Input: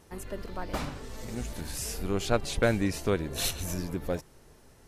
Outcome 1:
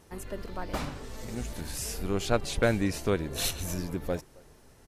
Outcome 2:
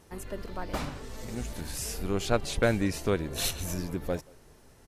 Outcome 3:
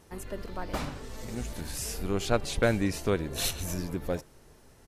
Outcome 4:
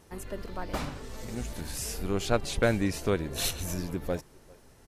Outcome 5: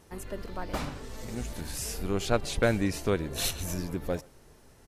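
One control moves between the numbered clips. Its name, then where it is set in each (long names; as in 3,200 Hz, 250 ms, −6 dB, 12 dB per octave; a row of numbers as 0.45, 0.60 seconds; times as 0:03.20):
far-end echo of a speakerphone, delay time: 270, 180, 80, 400, 120 milliseconds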